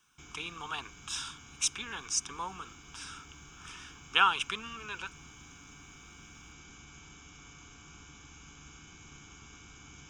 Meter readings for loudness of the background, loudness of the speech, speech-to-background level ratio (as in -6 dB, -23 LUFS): -51.5 LUFS, -33.0 LUFS, 18.5 dB